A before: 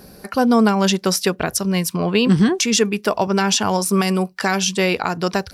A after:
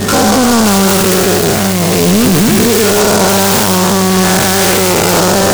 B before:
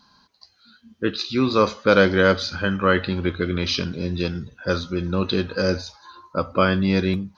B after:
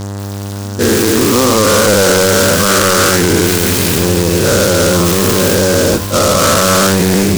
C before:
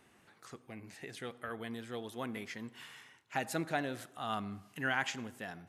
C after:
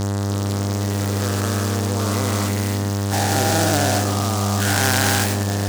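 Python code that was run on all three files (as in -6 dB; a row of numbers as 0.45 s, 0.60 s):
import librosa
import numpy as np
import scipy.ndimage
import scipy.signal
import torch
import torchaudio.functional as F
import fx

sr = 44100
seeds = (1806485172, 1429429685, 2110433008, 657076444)

p1 = fx.spec_dilate(x, sr, span_ms=480)
p2 = fx.high_shelf(p1, sr, hz=4200.0, db=11.0)
p3 = fx.over_compress(p2, sr, threshold_db=-17.0, ratio=-1.0)
p4 = p2 + (p3 * 10.0 ** (-2.0 / 20.0))
p5 = fx.dmg_buzz(p4, sr, base_hz=100.0, harmonics=20, level_db=-24.0, tilt_db=-6, odd_only=False)
p6 = fx.air_absorb(p5, sr, metres=250.0)
p7 = np.clip(p6, -10.0 ** (-8.5 / 20.0), 10.0 ** (-8.5 / 20.0))
p8 = fx.noise_mod_delay(p7, sr, seeds[0], noise_hz=5400.0, depth_ms=0.093)
y = p8 * 10.0 ** (-6 / 20.0) / np.max(np.abs(p8))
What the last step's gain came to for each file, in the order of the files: +2.5 dB, +2.5 dB, +2.5 dB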